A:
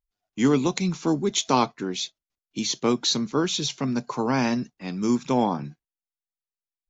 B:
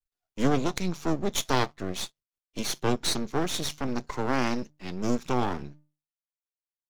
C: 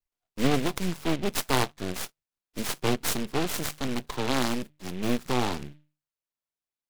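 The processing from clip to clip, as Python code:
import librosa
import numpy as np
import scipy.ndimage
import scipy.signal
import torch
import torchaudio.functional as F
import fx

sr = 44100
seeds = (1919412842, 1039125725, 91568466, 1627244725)

y1 = fx.hum_notches(x, sr, base_hz=50, count=3)
y1 = np.maximum(y1, 0.0)
y2 = fx.rattle_buzz(y1, sr, strikes_db=-32.0, level_db=-31.0)
y2 = fx.noise_mod_delay(y2, sr, seeds[0], noise_hz=2300.0, depth_ms=0.095)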